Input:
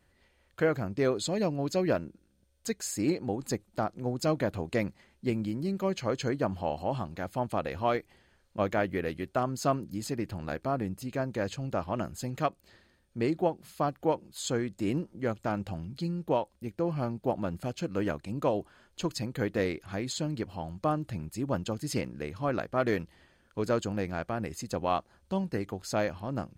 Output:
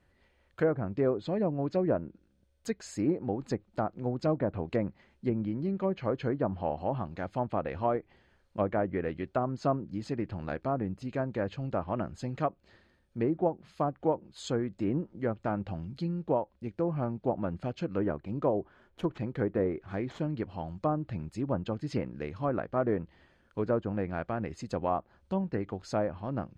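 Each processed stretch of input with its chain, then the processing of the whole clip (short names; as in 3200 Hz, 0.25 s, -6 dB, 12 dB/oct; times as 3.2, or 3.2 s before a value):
18–20.24 median filter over 9 samples + bell 380 Hz +4 dB 0.26 oct + notch 2700 Hz, Q 20
whole clip: high shelf 5100 Hz -12 dB; treble ducked by the level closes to 1100 Hz, closed at -24.5 dBFS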